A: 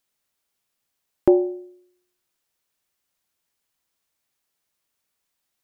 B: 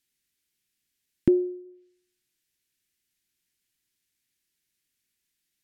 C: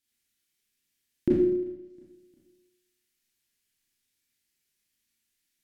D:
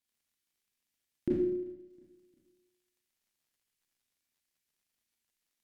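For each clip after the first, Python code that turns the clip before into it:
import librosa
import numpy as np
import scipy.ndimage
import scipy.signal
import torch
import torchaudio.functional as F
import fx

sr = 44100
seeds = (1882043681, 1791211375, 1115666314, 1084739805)

y1 = fx.env_lowpass_down(x, sr, base_hz=350.0, full_db=-24.5)
y1 = fx.band_shelf(y1, sr, hz=790.0, db=-15.5, octaves=1.7)
y2 = fx.echo_feedback(y1, sr, ms=354, feedback_pct=41, wet_db=-24.0)
y2 = fx.rev_schroeder(y2, sr, rt60_s=0.79, comb_ms=27, drr_db=-5.5)
y2 = y2 * librosa.db_to_amplitude(-5.5)
y3 = fx.dmg_crackle(y2, sr, seeds[0], per_s=110.0, level_db=-62.0)
y3 = y3 * librosa.db_to_amplitude(-7.0)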